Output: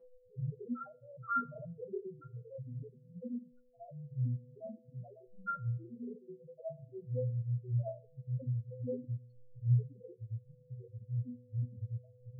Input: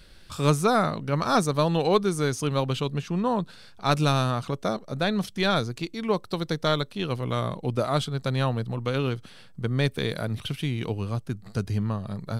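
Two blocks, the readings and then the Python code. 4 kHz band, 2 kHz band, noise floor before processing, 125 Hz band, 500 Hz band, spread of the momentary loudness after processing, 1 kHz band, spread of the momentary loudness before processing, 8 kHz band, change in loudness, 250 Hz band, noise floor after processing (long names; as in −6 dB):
below −40 dB, below −15 dB, −49 dBFS, −9.0 dB, −19.0 dB, 15 LU, −17.0 dB, 9 LU, below −40 dB, −13.5 dB, −18.0 dB, −63 dBFS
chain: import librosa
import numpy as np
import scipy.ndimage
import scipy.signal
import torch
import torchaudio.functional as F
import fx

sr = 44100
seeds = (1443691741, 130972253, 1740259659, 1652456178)

y = fx.phase_scramble(x, sr, seeds[0], window_ms=200)
y = fx.phaser_stages(y, sr, stages=4, low_hz=210.0, high_hz=4900.0, hz=0.72, feedback_pct=10)
y = fx.high_shelf(y, sr, hz=6800.0, db=-5.0)
y = fx.spec_topn(y, sr, count=1)
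y = y + 10.0 ** (-57.0 / 20.0) * np.sin(2.0 * np.pi * 500.0 * np.arange(len(y)) / sr)
y = fx.stiff_resonator(y, sr, f0_hz=120.0, decay_s=0.65, stiffness=0.008)
y = fx.dereverb_blind(y, sr, rt60_s=1.3)
y = fx.low_shelf(y, sr, hz=190.0, db=-7.0)
y = F.gain(torch.from_numpy(y), 13.5).numpy()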